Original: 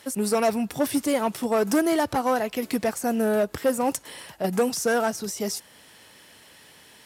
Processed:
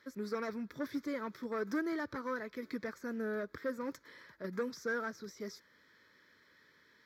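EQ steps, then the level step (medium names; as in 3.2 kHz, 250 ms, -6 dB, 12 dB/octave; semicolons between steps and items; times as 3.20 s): tone controls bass -9 dB, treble -14 dB; static phaser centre 2.8 kHz, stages 6; -8.0 dB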